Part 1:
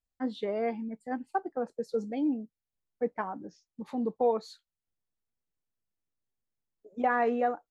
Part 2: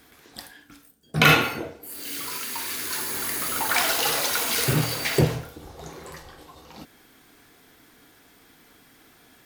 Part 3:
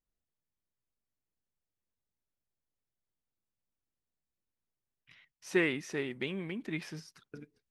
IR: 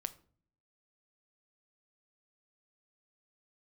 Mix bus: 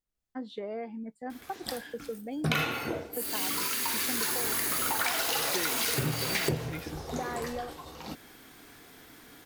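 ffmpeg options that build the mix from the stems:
-filter_complex "[0:a]acompressor=threshold=-32dB:ratio=6,adelay=150,volume=-1.5dB[link_01];[1:a]adelay=1300,volume=2.5dB[link_02];[2:a]volume=-0.5dB[link_03];[link_01][link_02][link_03]amix=inputs=3:normalize=0,acompressor=threshold=-26dB:ratio=8"

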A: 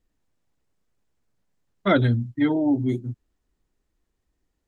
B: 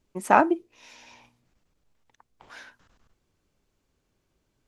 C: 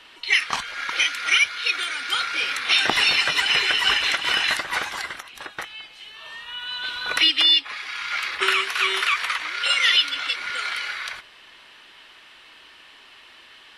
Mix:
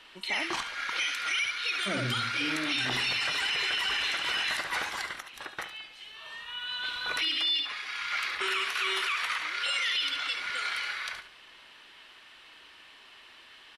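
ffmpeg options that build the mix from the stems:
ffmpeg -i stem1.wav -i stem2.wav -i stem3.wav -filter_complex "[0:a]volume=-15dB,asplit=2[link_01][link_02];[link_02]volume=-3.5dB[link_03];[1:a]volume=-15.5dB[link_04];[2:a]volume=-5dB,asplit=2[link_05][link_06];[link_06]volume=-11dB[link_07];[link_03][link_07]amix=inputs=2:normalize=0,aecho=0:1:71|142|213|284:1|0.3|0.09|0.027[link_08];[link_01][link_04][link_05][link_08]amix=inputs=4:normalize=0,alimiter=limit=-21dB:level=0:latency=1:release=15" out.wav

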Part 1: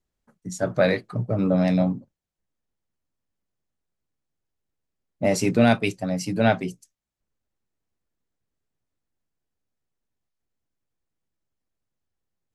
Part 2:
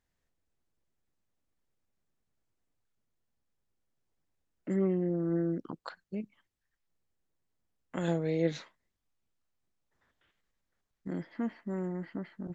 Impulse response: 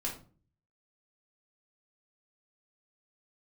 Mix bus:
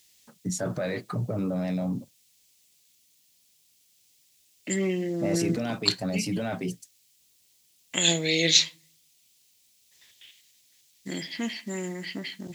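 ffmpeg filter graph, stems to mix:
-filter_complex "[0:a]acompressor=threshold=-23dB:ratio=6,alimiter=level_in=3dB:limit=-24dB:level=0:latency=1:release=12,volume=-3dB,acontrast=79,volume=-2dB[link_01];[1:a]aexciter=amount=12.7:drive=7.8:freq=2200,volume=1dB,asplit=2[link_02][link_03];[link_03]volume=-16dB[link_04];[2:a]atrim=start_sample=2205[link_05];[link_04][link_05]afir=irnorm=-1:irlink=0[link_06];[link_01][link_02][link_06]amix=inputs=3:normalize=0,highpass=83"

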